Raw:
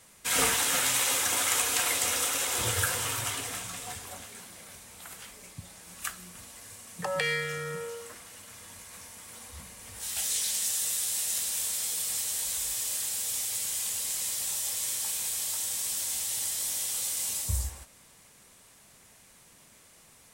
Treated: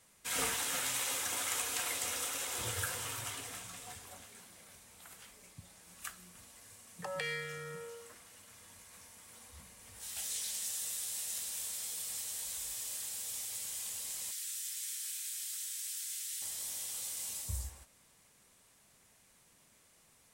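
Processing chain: 14.31–16.42 steep high-pass 1400 Hz 36 dB/oct; gain -9 dB

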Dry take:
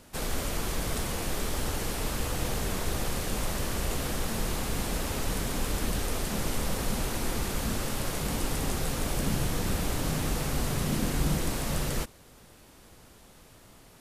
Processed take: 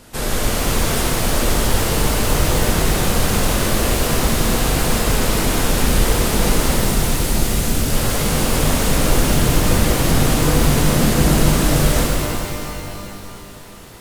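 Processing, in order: 6.75–7.92 bell 900 Hz -7.5 dB 3 oct; shimmer reverb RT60 3 s, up +12 st, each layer -8 dB, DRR -3.5 dB; gain +8 dB

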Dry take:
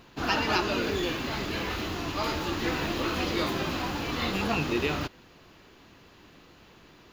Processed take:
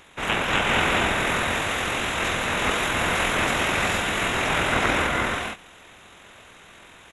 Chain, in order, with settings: spectral limiter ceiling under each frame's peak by 24 dB; non-linear reverb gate 0.5 s rising, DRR -1.5 dB; pitch shift -10.5 st; gain +3.5 dB

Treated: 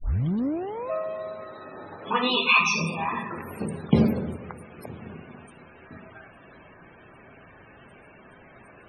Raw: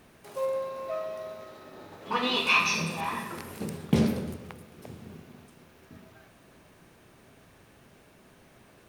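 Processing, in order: tape start at the beginning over 0.90 s; loudest bins only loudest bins 64; mismatched tape noise reduction encoder only; gain +4 dB

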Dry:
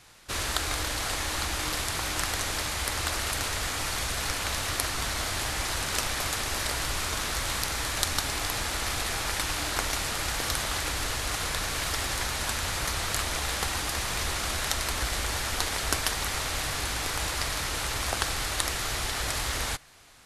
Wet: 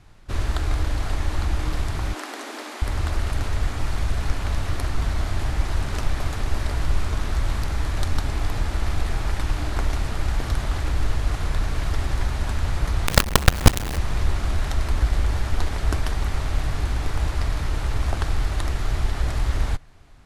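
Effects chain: 2.13–2.82 steep high-pass 240 Hz 72 dB/oct; tilt -3.5 dB/oct; notch 500 Hz, Q 12; 13.07–13.98 companded quantiser 2-bit; gain -1 dB

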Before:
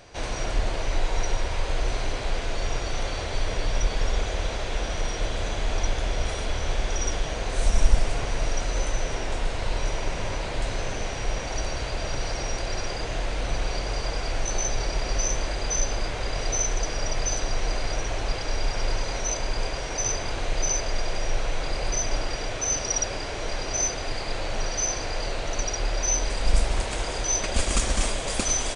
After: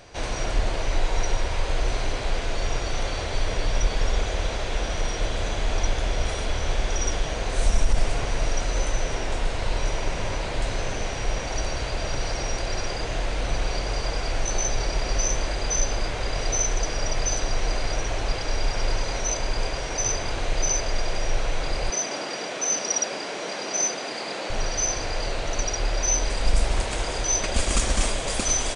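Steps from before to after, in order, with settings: 21.9–24.5 steep high-pass 170 Hz 36 dB/oct; maximiser +9.5 dB; gain -8 dB

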